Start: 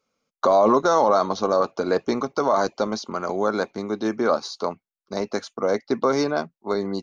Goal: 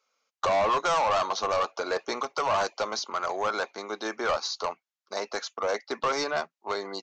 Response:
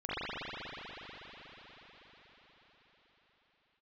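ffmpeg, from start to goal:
-af "highpass=730,acontrast=77,aresample=16000,asoftclip=type=tanh:threshold=-16.5dB,aresample=44100,volume=-4dB"

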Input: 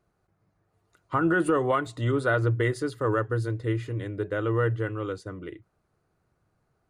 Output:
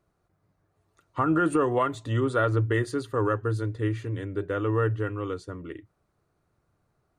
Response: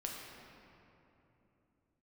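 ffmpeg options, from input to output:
-af "asetrate=42336,aresample=44100"

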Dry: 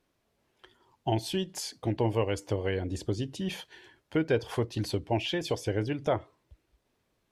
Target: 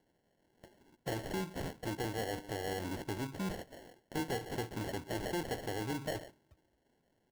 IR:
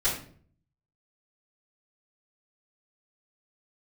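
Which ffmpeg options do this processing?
-filter_complex "[0:a]alimiter=limit=-19dB:level=0:latency=1:release=208,asplit=2[link_01][link_02];[link_02]adelay=139.9,volume=-25dB,highshelf=frequency=4000:gain=-3.15[link_03];[link_01][link_03]amix=inputs=2:normalize=0,asoftclip=type=tanh:threshold=-33dB,highpass=130,bandreject=frequency=3500:width=5.9,acrusher=samples=36:mix=1:aa=0.000001,volume=1dB"

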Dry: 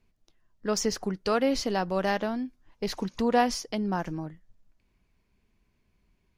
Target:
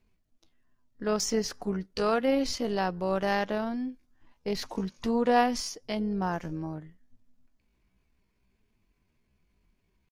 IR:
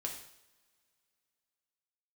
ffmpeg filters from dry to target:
-af "atempo=0.63,tremolo=f=250:d=0.261"

